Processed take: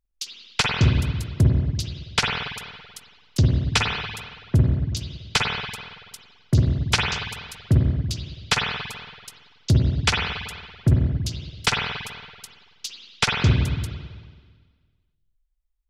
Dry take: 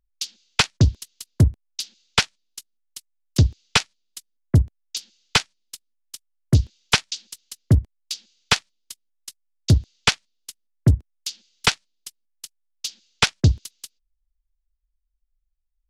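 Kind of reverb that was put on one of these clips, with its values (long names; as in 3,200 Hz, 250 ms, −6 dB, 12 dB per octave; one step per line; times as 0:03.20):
spring reverb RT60 1.6 s, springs 47/55 ms, chirp 45 ms, DRR −2 dB
level −3.5 dB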